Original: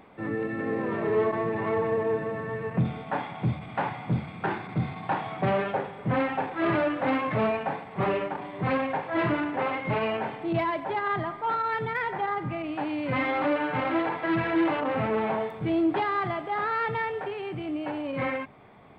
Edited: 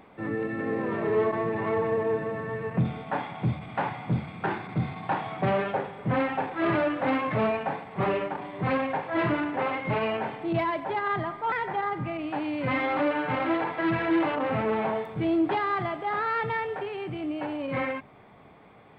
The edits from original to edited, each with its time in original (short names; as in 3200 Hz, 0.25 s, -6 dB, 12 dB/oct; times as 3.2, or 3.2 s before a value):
11.52–11.97 cut